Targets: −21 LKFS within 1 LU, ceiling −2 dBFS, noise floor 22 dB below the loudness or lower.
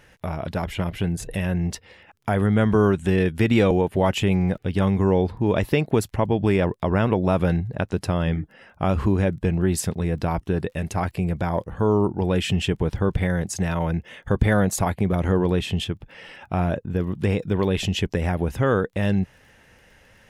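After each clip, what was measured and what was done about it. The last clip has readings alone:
crackle rate 22 per second; integrated loudness −23.0 LKFS; sample peak −6.0 dBFS; target loudness −21.0 LKFS
→ click removal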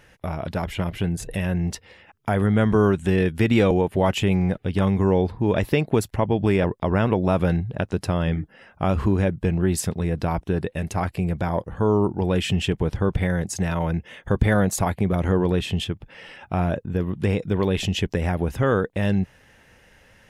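crackle rate 0 per second; integrated loudness −23.0 LKFS; sample peak −6.0 dBFS; target loudness −21.0 LKFS
→ level +2 dB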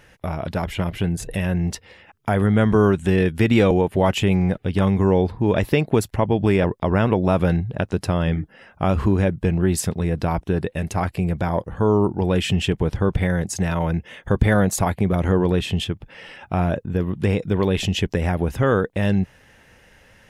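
integrated loudness −21.0 LKFS; sample peak −4.0 dBFS; background noise floor −53 dBFS

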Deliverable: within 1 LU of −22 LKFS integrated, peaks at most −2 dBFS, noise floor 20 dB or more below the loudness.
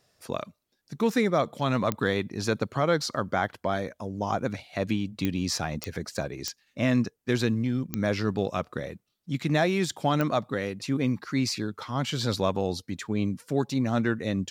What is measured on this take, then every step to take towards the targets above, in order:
number of clicks 6; integrated loudness −28.5 LKFS; sample peak −12.0 dBFS; target loudness −22.0 LKFS
→ click removal
level +6.5 dB

